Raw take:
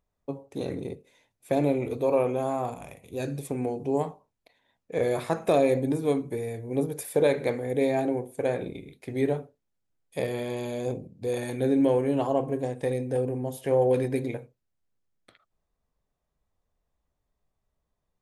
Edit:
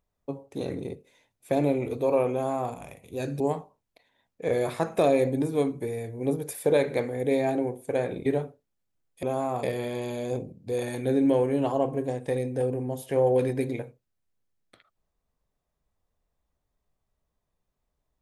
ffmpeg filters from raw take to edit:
-filter_complex "[0:a]asplit=5[a][b][c][d][e];[a]atrim=end=3.402[f];[b]atrim=start=3.898:end=8.762[g];[c]atrim=start=9.208:end=10.182[h];[d]atrim=start=2.318:end=2.722[i];[e]atrim=start=10.178[j];[f][g]acrossfade=d=0.004:c1=hsin:c2=hsin[k];[k][h]acrossfade=d=0.004:c1=hsin:c2=hsin[l];[l][i]acrossfade=d=0.004:c1=hsin:c2=hsin[m];[m][j]acrossfade=d=0.004:c1=hsin:c2=hsin"

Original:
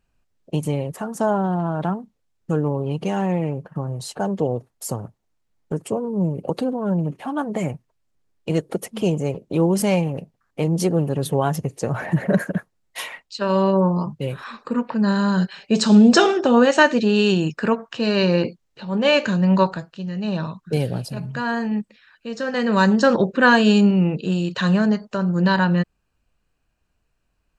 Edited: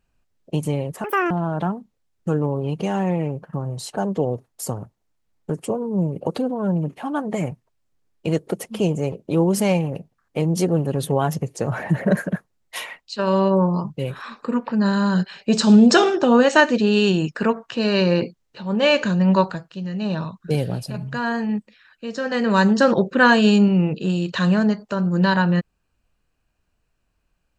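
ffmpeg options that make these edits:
-filter_complex "[0:a]asplit=3[a][b][c];[a]atrim=end=1.044[d];[b]atrim=start=1.04:end=1.53,asetpts=PTS-STARTPTS,asetrate=81144,aresample=44100,atrim=end_sample=11744,asetpts=PTS-STARTPTS[e];[c]atrim=start=1.526[f];[d][e]acrossfade=d=0.004:c1=hsin:c2=hsin[g];[g][f]acrossfade=d=0.004:c1=hsin:c2=hsin"

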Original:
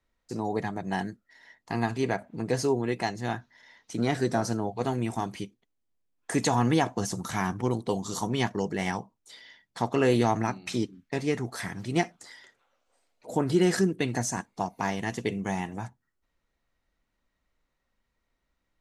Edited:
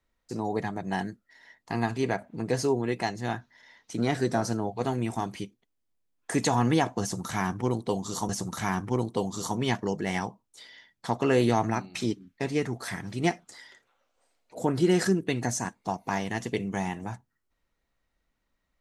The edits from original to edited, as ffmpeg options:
-filter_complex "[0:a]asplit=2[a][b];[a]atrim=end=8.292[c];[b]atrim=start=7.008[d];[c][d]acrossfade=d=0.004:c1=hsin:c2=hsin"

